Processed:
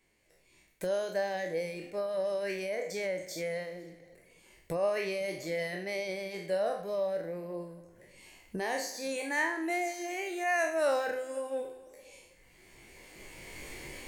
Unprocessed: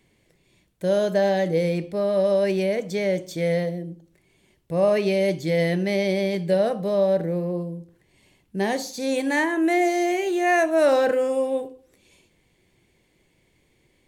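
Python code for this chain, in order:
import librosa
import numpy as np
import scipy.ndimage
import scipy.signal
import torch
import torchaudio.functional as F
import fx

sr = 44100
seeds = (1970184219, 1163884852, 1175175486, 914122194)

p1 = fx.spec_trails(x, sr, decay_s=1.22)
p2 = fx.recorder_agc(p1, sr, target_db=-14.0, rise_db_per_s=13.0, max_gain_db=30)
p3 = fx.peak_eq(p2, sr, hz=3500.0, db=-8.0, octaves=0.31)
p4 = p3 + fx.echo_single(p3, sr, ms=503, db=-23.5, dry=0)
p5 = fx.dereverb_blind(p4, sr, rt60_s=0.95)
p6 = fx.peak_eq(p5, sr, hz=140.0, db=-11.5, octaves=2.8)
y = p6 * 10.0 ** (-7.0 / 20.0)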